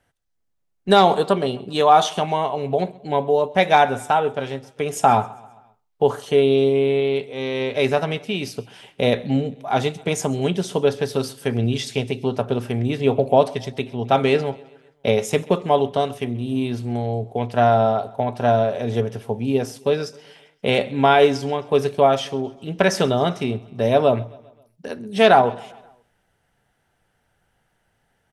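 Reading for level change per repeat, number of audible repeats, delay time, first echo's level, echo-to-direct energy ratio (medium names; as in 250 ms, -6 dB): -5.5 dB, 3, 132 ms, -23.0 dB, -21.5 dB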